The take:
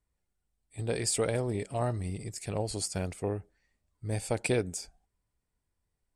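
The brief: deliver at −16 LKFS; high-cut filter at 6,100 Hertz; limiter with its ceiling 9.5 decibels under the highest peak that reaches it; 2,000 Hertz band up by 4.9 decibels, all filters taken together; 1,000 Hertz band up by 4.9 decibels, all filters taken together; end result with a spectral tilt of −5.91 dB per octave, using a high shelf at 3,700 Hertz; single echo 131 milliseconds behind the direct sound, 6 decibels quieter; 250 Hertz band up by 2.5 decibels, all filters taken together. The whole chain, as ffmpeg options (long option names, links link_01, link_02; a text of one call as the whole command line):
ffmpeg -i in.wav -af "lowpass=6100,equalizer=frequency=250:width_type=o:gain=3,equalizer=frequency=1000:width_type=o:gain=6,equalizer=frequency=2000:width_type=o:gain=7,highshelf=frequency=3700:gain=-8,alimiter=limit=-22.5dB:level=0:latency=1,aecho=1:1:131:0.501,volume=18dB" out.wav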